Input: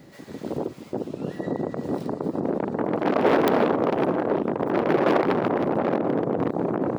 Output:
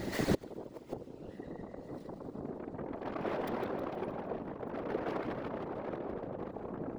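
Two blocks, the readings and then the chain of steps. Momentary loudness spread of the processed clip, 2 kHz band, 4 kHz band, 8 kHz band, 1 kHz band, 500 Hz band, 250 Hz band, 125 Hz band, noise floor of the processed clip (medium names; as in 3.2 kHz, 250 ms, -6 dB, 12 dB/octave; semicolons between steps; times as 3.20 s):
10 LU, -13.5 dB, -10.0 dB, no reading, -15.5 dB, -15.5 dB, -15.0 dB, -11.5 dB, -51 dBFS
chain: two-band feedback delay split 350 Hz, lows 383 ms, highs 157 ms, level -8 dB; inverted gate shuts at -25 dBFS, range -27 dB; whisper effect; trim +10 dB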